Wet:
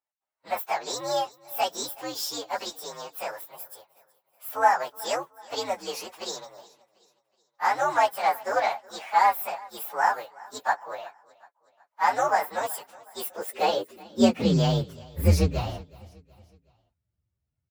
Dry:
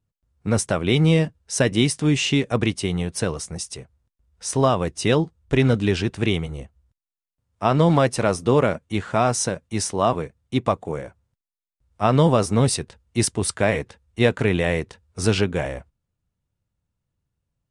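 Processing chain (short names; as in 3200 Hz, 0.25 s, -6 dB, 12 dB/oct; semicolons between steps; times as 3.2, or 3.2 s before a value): inharmonic rescaling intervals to 126%; feedback echo 0.371 s, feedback 44%, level -22 dB; high-pass sweep 830 Hz -> 78 Hz, 13.17–15.17; gain -2 dB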